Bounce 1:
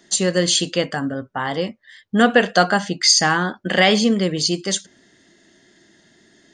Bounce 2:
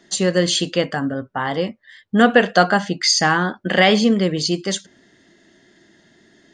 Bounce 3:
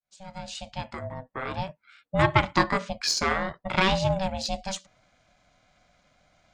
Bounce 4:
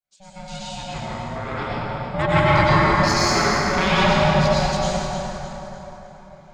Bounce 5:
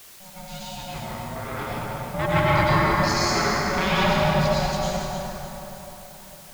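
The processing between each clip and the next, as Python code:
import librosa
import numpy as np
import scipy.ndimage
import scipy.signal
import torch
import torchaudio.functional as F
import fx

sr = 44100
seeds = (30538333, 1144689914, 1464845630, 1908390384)

y1 = fx.lowpass(x, sr, hz=3900.0, slope=6)
y1 = y1 * 10.0 ** (1.5 / 20.0)
y2 = fx.fade_in_head(y1, sr, length_s=1.53)
y2 = fx.cheby_harmonics(y2, sr, harmonics=(2, 3, 7), levels_db=(-18, -23, -43), full_scale_db=-1.0)
y2 = y2 * np.sin(2.0 * np.pi * 380.0 * np.arange(len(y2)) / sr)
y2 = y2 * 10.0 ** (-4.5 / 20.0)
y3 = fx.echo_feedback(y2, sr, ms=303, feedback_pct=42, wet_db=-10.0)
y3 = fx.rev_plate(y3, sr, seeds[0], rt60_s=3.9, hf_ratio=0.45, predelay_ms=85, drr_db=-9.0)
y3 = y3 * 10.0 ** (-2.5 / 20.0)
y4 = fx.dmg_noise_colour(y3, sr, seeds[1], colour='white', level_db=-43.0)
y4 = y4 * 10.0 ** (-3.5 / 20.0)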